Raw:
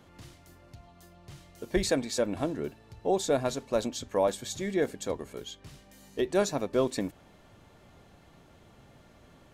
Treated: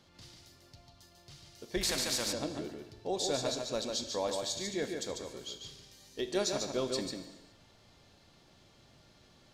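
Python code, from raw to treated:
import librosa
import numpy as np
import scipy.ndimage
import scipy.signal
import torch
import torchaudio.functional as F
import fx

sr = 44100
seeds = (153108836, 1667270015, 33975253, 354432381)

y = fx.peak_eq(x, sr, hz=4700.0, db=13.5, octaves=1.2)
y = y + 10.0 ** (-5.0 / 20.0) * np.pad(y, (int(145 * sr / 1000.0), 0))[:len(y)]
y = fx.rev_gated(y, sr, seeds[0], gate_ms=440, shape='falling', drr_db=9.0)
y = fx.spectral_comp(y, sr, ratio=2.0, at=(1.81, 2.33))
y = y * 10.0 ** (-8.5 / 20.0)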